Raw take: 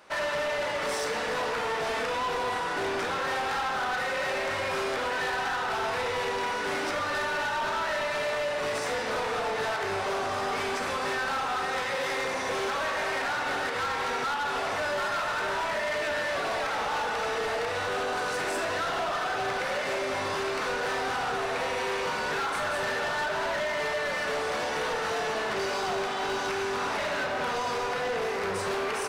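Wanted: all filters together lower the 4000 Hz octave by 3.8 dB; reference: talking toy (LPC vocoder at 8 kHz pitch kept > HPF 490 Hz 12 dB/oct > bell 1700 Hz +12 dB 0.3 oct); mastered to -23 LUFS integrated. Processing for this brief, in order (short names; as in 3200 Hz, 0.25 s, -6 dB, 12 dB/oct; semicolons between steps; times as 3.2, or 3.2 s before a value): bell 4000 Hz -5.5 dB; LPC vocoder at 8 kHz pitch kept; HPF 490 Hz 12 dB/oct; bell 1700 Hz +12 dB 0.3 oct; gain +4.5 dB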